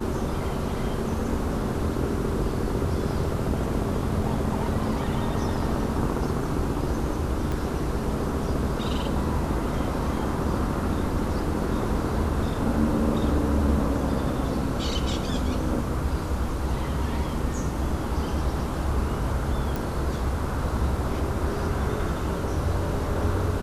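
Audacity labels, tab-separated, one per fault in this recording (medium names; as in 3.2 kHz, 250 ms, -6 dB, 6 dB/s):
7.520000	7.520000	pop
19.760000	19.760000	pop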